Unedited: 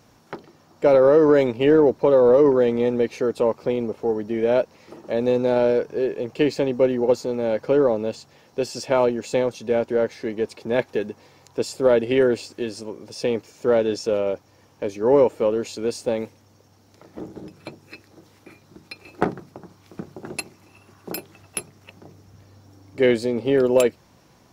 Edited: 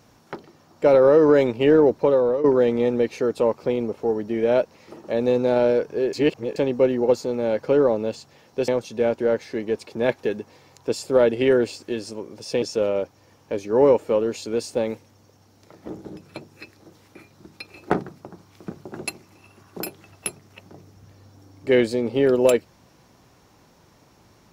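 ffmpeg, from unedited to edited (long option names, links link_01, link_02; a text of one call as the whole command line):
ffmpeg -i in.wav -filter_complex "[0:a]asplit=6[link_01][link_02][link_03][link_04][link_05][link_06];[link_01]atrim=end=2.44,asetpts=PTS-STARTPTS,afade=type=out:start_time=2.01:duration=0.43:silence=0.223872[link_07];[link_02]atrim=start=2.44:end=6.132,asetpts=PTS-STARTPTS,afade=type=in:duration=0.004:curve=hsin:silence=0.223872[link_08];[link_03]atrim=start=6.128:end=6.562,asetpts=PTS-STARTPTS,areverse[link_09];[link_04]atrim=start=6.558:end=8.682[link_10];[link_05]atrim=start=9.378:end=13.322[link_11];[link_06]atrim=start=13.928[link_12];[link_07][link_08]concat=n=2:v=0:a=1[link_13];[link_13][link_09]acrossfade=duration=0.004:curve1=hsin:curve2=hsin[link_14];[link_14][link_10]acrossfade=duration=0.004:curve1=hsin:curve2=hsin[link_15];[link_15][link_11]acrossfade=duration=0.004:curve1=hsin:curve2=hsin[link_16];[link_16][link_12]acrossfade=duration=0.004:curve1=hsin:curve2=hsin" out.wav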